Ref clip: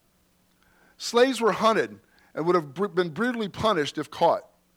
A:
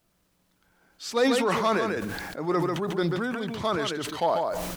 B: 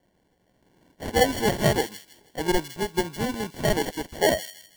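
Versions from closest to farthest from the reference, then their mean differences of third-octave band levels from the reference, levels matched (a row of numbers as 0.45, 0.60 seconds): A, B; 6.5, 10.5 decibels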